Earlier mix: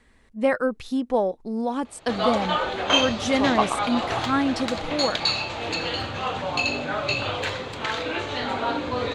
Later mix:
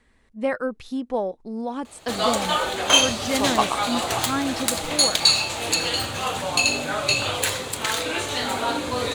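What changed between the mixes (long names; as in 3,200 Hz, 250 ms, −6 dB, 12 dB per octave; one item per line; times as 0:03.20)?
speech −3.0 dB
background: remove high-frequency loss of the air 200 metres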